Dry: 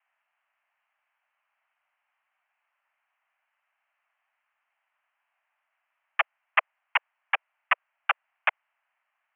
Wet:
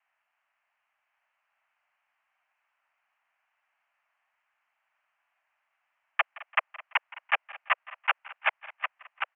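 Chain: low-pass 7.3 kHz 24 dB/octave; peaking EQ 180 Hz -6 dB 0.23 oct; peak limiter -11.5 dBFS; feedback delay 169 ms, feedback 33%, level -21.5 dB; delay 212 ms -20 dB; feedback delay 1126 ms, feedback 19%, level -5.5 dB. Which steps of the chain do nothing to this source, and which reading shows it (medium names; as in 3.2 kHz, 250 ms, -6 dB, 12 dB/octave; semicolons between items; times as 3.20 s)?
low-pass 7.3 kHz: input has nothing above 3.4 kHz; peaking EQ 180 Hz: input has nothing below 480 Hz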